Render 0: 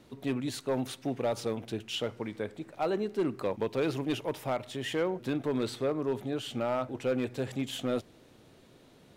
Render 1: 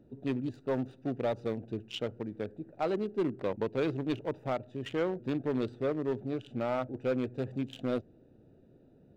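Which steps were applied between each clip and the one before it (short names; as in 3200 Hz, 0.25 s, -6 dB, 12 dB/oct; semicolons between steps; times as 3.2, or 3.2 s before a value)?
Wiener smoothing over 41 samples; bell 11000 Hz -11 dB 0.53 oct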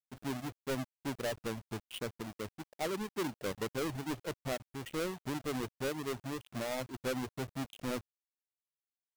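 half-waves squared off; reverb removal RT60 0.57 s; bit-crush 8-bit; gain -7.5 dB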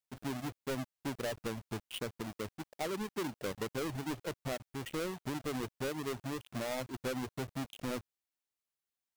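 compressor, threshold -36 dBFS, peak gain reduction 4.5 dB; gain +2 dB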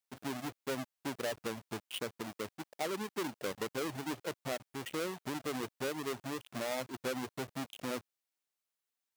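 HPF 250 Hz 6 dB/oct; gain +1.5 dB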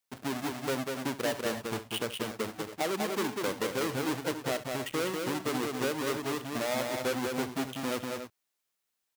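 tapped delay 67/195/273/289 ms -15/-4/-14.5/-13.5 dB; gain +5 dB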